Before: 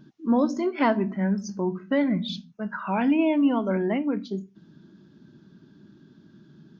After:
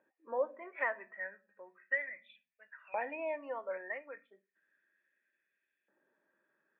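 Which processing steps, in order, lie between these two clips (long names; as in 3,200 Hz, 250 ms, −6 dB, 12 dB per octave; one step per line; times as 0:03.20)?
bad sample-rate conversion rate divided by 6×, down filtered, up hold
auto-filter high-pass saw up 0.34 Hz 830–2,600 Hz
formant resonators in series e
level +5 dB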